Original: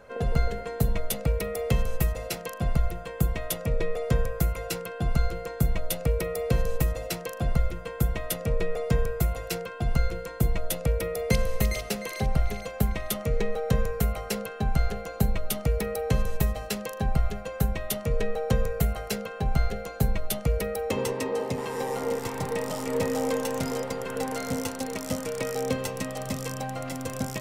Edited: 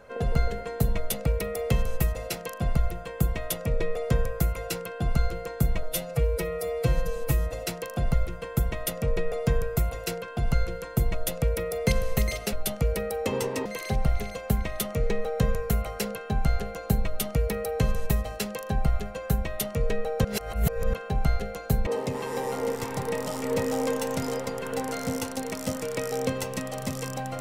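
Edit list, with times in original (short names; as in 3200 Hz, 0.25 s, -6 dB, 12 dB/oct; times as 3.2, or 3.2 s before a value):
5.83–6.96 stretch 1.5×
18.55–19.24 reverse
20.17–21.3 move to 11.96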